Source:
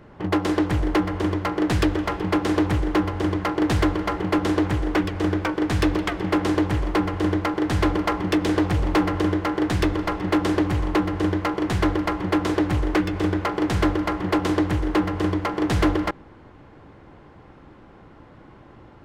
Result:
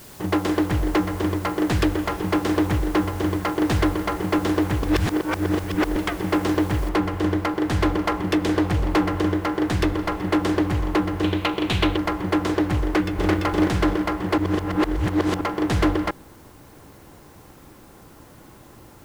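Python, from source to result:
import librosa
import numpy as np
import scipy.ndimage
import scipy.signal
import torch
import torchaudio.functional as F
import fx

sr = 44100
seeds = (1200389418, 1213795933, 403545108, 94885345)

y = fx.noise_floor_step(x, sr, seeds[0], at_s=6.89, before_db=-46, after_db=-56, tilt_db=0.0)
y = fx.band_shelf(y, sr, hz=3100.0, db=10.5, octaves=1.0, at=(11.23, 11.97))
y = fx.echo_throw(y, sr, start_s=12.84, length_s=0.51, ms=340, feedback_pct=40, wet_db=-1.0)
y = fx.edit(y, sr, fx.reverse_span(start_s=4.83, length_s=1.13),
    fx.reverse_span(start_s=14.38, length_s=1.03), tone=tone)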